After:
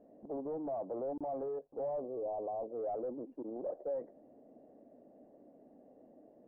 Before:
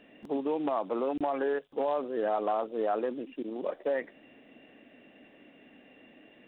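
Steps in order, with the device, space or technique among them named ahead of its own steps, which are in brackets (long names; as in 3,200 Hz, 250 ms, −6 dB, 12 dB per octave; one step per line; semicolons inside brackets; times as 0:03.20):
overdriven synthesiser ladder filter (soft clipping −33.5 dBFS, distortion −8 dB; transistor ladder low-pass 770 Hz, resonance 45%)
0:02.00–0:02.71: elliptic band-stop filter 1,100–2,500 Hz
level +3.5 dB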